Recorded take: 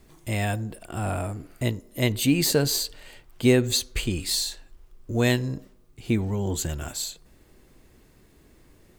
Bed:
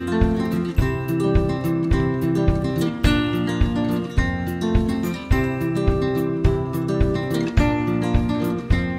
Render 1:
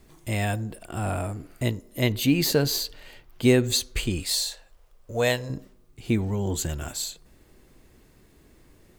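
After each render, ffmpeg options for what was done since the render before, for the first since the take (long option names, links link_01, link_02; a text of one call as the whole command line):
ffmpeg -i in.wav -filter_complex "[0:a]asettb=1/sr,asplit=3[link_01][link_02][link_03];[link_01]atrim=end=2.014[link_04];[link_02]atrim=start=2.01:end=3.42,asetpts=PTS-STARTPTS,afade=type=in:duration=0.004:curve=qsin,afade=type=out:start_time=1.406:duration=0.004:curve=qsin,equalizer=frequency=8300:width_type=o:width=0.44:gain=-7.5[link_05];[link_03]atrim=start=3.416[link_06];[link_04][link_05]acrossfade=duration=0.004:curve1=hsin:curve2=qsin[link_07];[link_07][link_06]acrossfade=duration=0.004:curve1=qsin:curve2=hsin,asettb=1/sr,asplit=3[link_08][link_09][link_10];[link_08]atrim=end=4.234[link_11];[link_09]atrim=start=4.23:end=5.5,asetpts=PTS-STARTPTS,afade=type=in:duration=0.004:curve=qsin,afade=type=out:start_time=1.266:duration=0.004:curve=qsin,lowshelf=frequency=420:width_type=q:width=3:gain=-6.5[link_12];[link_10]atrim=start=5.496[link_13];[link_11][link_12]acrossfade=duration=0.004:curve1=hsin:curve2=qsin[link_14];[link_14][link_13]acrossfade=duration=0.004:curve1=qsin:curve2=hsin" out.wav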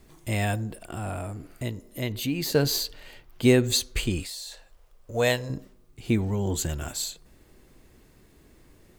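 ffmpeg -i in.wav -filter_complex "[0:a]asettb=1/sr,asplit=3[link_01][link_02][link_03];[link_01]atrim=end=0.944[link_04];[link_02]atrim=start=0.94:end=2.55,asetpts=PTS-STARTPTS,afade=type=in:duration=0.004:curve=qsin,afade=type=out:start_time=1.606:duration=0.004:curve=qsin,acompressor=threshold=-36dB:ratio=1.5:attack=3.2:release=140:knee=1:detection=peak[link_05];[link_03]atrim=start=2.546[link_06];[link_04][link_05]acrossfade=duration=0.004:curve1=hsin:curve2=qsin[link_07];[link_07][link_06]acrossfade=duration=0.004:curve1=qsin:curve2=hsin,asettb=1/sr,asplit=3[link_08][link_09][link_10];[link_08]atrim=end=4.234[link_11];[link_09]atrim=start=4.23:end=5.14,asetpts=PTS-STARTPTS,afade=type=in:duration=0.004:curve=qsin,afade=type=out:start_time=0.906:duration=0.004:curve=qsin,acompressor=threshold=-35dB:ratio=6:attack=3.2:release=140:knee=1:detection=peak[link_12];[link_10]atrim=start=5.136[link_13];[link_11][link_12]acrossfade=duration=0.004:curve1=hsin:curve2=qsin[link_14];[link_14][link_13]acrossfade=duration=0.004:curve1=qsin:curve2=hsin" out.wav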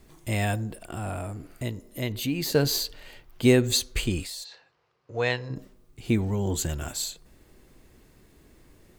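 ffmpeg -i in.wav -filter_complex "[0:a]asplit=3[link_01][link_02][link_03];[link_01]afade=type=out:start_time=4.43:duration=0.02[link_04];[link_02]highpass=frequency=110:width=0.5412,highpass=frequency=110:width=1.3066,equalizer=frequency=220:width_type=q:width=4:gain=-10,equalizer=frequency=600:width_type=q:width=4:gain=-9,equalizer=frequency=3400:width_type=q:width=4:gain=-6,lowpass=frequency=4800:width=0.5412,lowpass=frequency=4800:width=1.3066,afade=type=in:start_time=4.43:duration=0.02,afade=type=out:start_time=5.55:duration=0.02[link_05];[link_03]afade=type=in:start_time=5.55:duration=0.02[link_06];[link_04][link_05][link_06]amix=inputs=3:normalize=0" out.wav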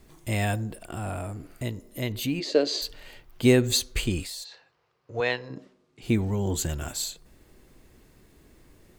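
ffmpeg -i in.wav -filter_complex "[0:a]asplit=3[link_01][link_02][link_03];[link_01]afade=type=out:start_time=2.39:duration=0.02[link_04];[link_02]highpass=frequency=290:width=0.5412,highpass=frequency=290:width=1.3066,equalizer=frequency=310:width_type=q:width=4:gain=4,equalizer=frequency=590:width_type=q:width=4:gain=7,equalizer=frequency=880:width_type=q:width=4:gain=-8,equalizer=frequency=1500:width_type=q:width=4:gain=-6,equalizer=frequency=5700:width_type=q:width=4:gain=-4,lowpass=frequency=6100:width=0.5412,lowpass=frequency=6100:width=1.3066,afade=type=in:start_time=2.39:duration=0.02,afade=type=out:start_time=2.81:duration=0.02[link_05];[link_03]afade=type=in:start_time=2.81:duration=0.02[link_06];[link_04][link_05][link_06]amix=inputs=3:normalize=0,asettb=1/sr,asplit=3[link_07][link_08][link_09];[link_07]atrim=end=5.204[link_10];[link_08]atrim=start=5.2:end=6.02,asetpts=PTS-STARTPTS,afade=type=in:duration=0.004:curve=qsin,afade=type=out:start_time=0.816:duration=0.004:curve=qsin,highpass=200,lowpass=5500[link_11];[link_09]atrim=start=6.016[link_12];[link_10][link_11]acrossfade=duration=0.004:curve1=hsin:curve2=qsin[link_13];[link_13][link_12]acrossfade=duration=0.004:curve1=qsin:curve2=hsin" out.wav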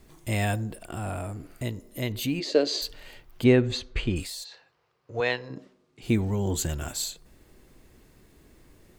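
ffmpeg -i in.wav -filter_complex "[0:a]asplit=3[link_01][link_02][link_03];[link_01]afade=type=out:start_time=3.43:duration=0.02[link_04];[link_02]lowpass=2900,afade=type=in:start_time=3.43:duration=0.02,afade=type=out:start_time=4.15:duration=0.02[link_05];[link_03]afade=type=in:start_time=4.15:duration=0.02[link_06];[link_04][link_05][link_06]amix=inputs=3:normalize=0" out.wav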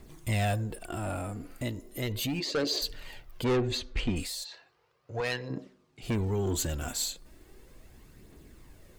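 ffmpeg -i in.wav -af "asoftclip=type=tanh:threshold=-23.5dB,aphaser=in_gain=1:out_gain=1:delay=4.3:decay=0.38:speed=0.36:type=triangular" out.wav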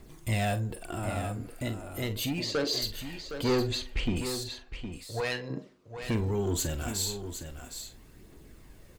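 ffmpeg -i in.wav -filter_complex "[0:a]asplit=2[link_01][link_02];[link_02]adelay=44,volume=-11.5dB[link_03];[link_01][link_03]amix=inputs=2:normalize=0,asplit=2[link_04][link_05];[link_05]aecho=0:1:763:0.335[link_06];[link_04][link_06]amix=inputs=2:normalize=0" out.wav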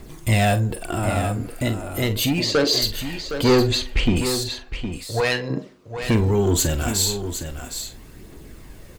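ffmpeg -i in.wav -af "volume=10.5dB" out.wav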